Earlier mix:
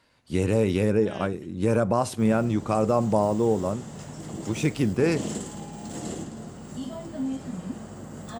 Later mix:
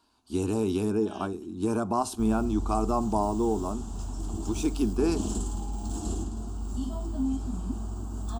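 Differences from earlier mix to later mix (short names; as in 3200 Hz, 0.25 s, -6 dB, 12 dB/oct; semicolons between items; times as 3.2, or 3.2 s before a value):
background: remove HPF 200 Hz 12 dB/oct; master: add fixed phaser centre 530 Hz, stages 6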